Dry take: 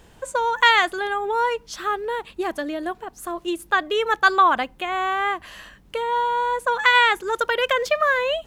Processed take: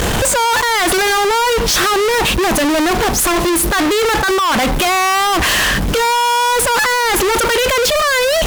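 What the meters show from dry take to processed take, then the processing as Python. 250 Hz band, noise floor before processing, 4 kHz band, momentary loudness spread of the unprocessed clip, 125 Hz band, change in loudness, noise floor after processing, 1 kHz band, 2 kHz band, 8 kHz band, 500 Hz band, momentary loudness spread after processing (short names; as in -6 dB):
+14.5 dB, -52 dBFS, +10.5 dB, 13 LU, n/a, +8.0 dB, -16 dBFS, +6.0 dB, +5.5 dB, +24.0 dB, +9.0 dB, 1 LU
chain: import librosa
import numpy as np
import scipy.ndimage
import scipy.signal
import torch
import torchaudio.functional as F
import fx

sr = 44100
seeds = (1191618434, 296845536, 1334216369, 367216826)

y = fx.over_compress(x, sr, threshold_db=-29.0, ratio=-1.0)
y = fx.fuzz(y, sr, gain_db=51.0, gate_db=-56.0)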